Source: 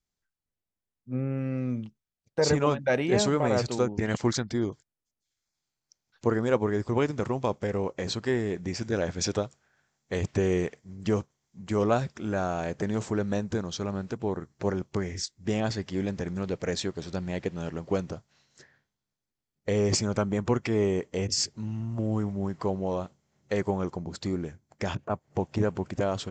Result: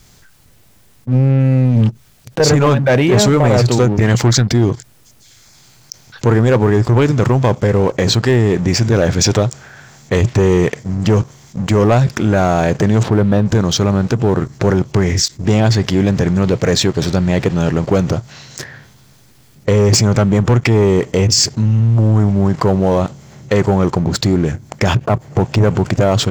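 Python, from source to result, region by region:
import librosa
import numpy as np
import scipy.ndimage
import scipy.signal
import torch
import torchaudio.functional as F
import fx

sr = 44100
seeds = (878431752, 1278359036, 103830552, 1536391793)

y = fx.chain(x, sr, fx.leveller(passes=2),
    fx.over_compress(threshold_db=-27.0, ratio=-0.5), at=(1.65, 2.4))
y = fx.chain(y, sr, fx.lowpass(hz=3800.0, slope=24),
    fx.peak_eq(hz=2100.0, db=-4.5, octaves=1.1), at=(13.03, 13.46))
y = fx.peak_eq(y, sr, hz=120.0, db=9.0, octaves=0.53)
y = fx.leveller(y, sr, passes=2)
y = fx.env_flatten(y, sr, amount_pct=50)
y = y * librosa.db_to_amplitude(5.0)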